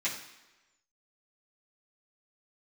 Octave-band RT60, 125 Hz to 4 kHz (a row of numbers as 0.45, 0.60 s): 0.85, 1.0, 1.1, 1.1, 1.1, 1.0 s